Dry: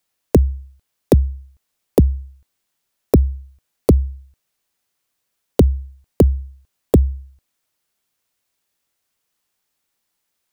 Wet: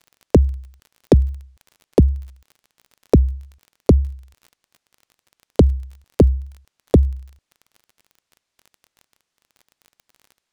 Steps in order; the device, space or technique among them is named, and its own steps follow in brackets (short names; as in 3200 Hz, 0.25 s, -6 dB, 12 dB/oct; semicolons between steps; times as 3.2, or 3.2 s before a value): lo-fi chain (LPF 6900 Hz 12 dB/oct; wow and flutter; crackle 28/s -34 dBFS)